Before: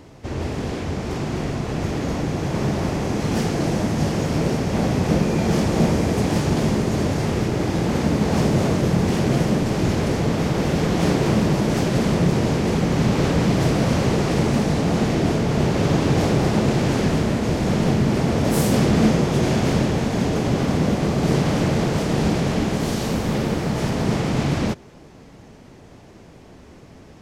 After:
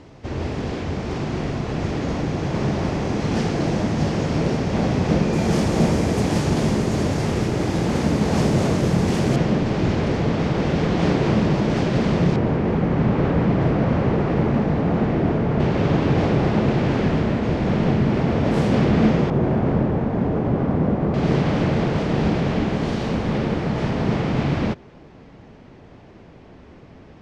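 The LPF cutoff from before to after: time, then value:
5600 Hz
from 5.33 s 11000 Hz
from 9.36 s 4200 Hz
from 12.36 s 1900 Hz
from 15.6 s 3100 Hz
from 19.3 s 1300 Hz
from 21.14 s 3500 Hz

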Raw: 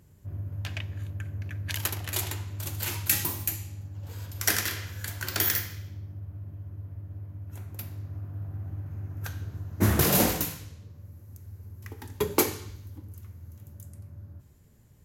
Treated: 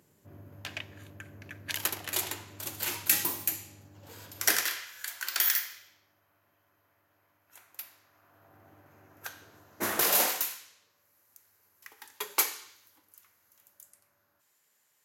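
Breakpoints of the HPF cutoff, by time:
4.44 s 260 Hz
4.86 s 1100 Hz
8.16 s 1100 Hz
8.6 s 520 Hz
9.95 s 520 Hz
10.59 s 1100 Hz

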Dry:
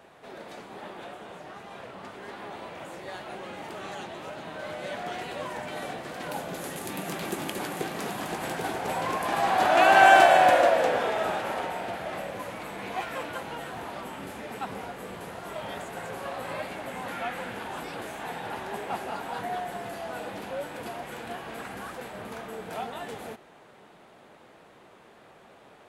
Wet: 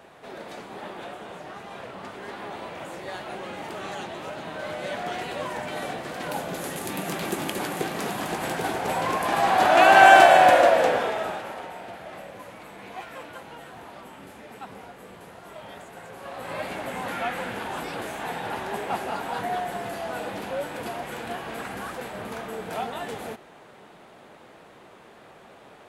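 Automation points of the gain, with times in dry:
10.88 s +3.5 dB
11.56 s -5.5 dB
16.14 s -5.5 dB
16.7 s +4 dB

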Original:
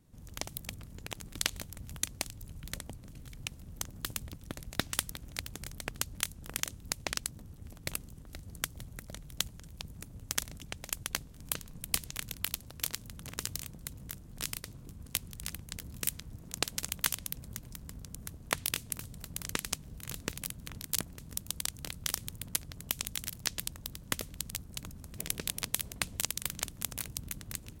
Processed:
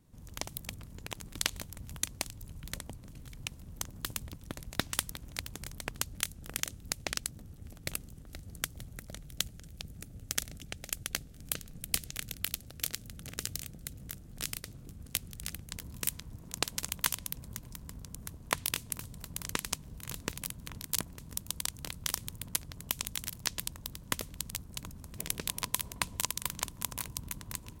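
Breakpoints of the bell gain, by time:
bell 1000 Hz 0.27 oct
+3 dB
from 6.08 s -5.5 dB
from 9.26 s -14 dB
from 14.02 s -6 dB
from 15.71 s +5.5 dB
from 25.49 s +13 dB

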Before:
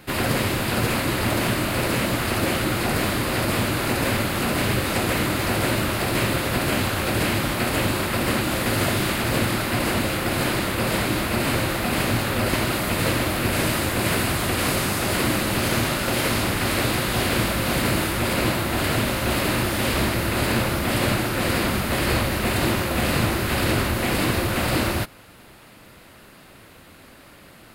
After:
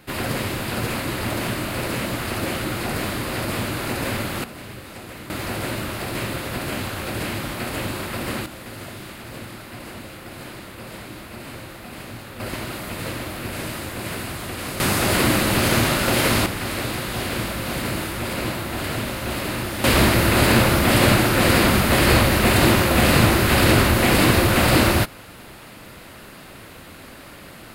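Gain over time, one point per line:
-3 dB
from 4.44 s -15 dB
from 5.3 s -5 dB
from 8.46 s -14 dB
from 12.4 s -7.5 dB
from 14.8 s +3.5 dB
from 16.46 s -4 dB
from 19.84 s +6 dB

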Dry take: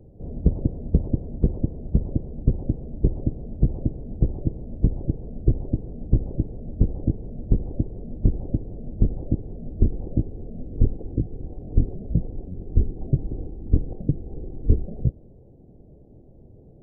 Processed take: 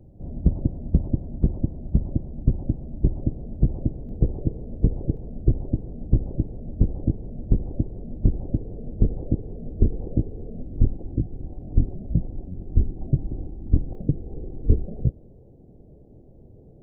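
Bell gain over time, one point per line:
bell 450 Hz 0.33 oct
-9.5 dB
from 3.23 s -3 dB
from 4.09 s +4 dB
from 5.17 s -2.5 dB
from 8.57 s +4 dB
from 10.62 s -8 dB
from 13.95 s +1 dB

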